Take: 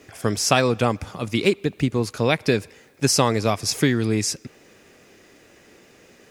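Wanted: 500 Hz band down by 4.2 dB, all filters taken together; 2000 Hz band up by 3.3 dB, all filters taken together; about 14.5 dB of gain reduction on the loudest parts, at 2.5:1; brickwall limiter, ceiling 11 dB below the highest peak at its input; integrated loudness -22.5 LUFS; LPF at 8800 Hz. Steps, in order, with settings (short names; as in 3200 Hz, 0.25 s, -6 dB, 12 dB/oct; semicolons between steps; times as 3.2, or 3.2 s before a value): LPF 8800 Hz; bell 500 Hz -5.5 dB; bell 2000 Hz +4.5 dB; compressor 2.5:1, threshold -37 dBFS; gain +16 dB; limiter -10.5 dBFS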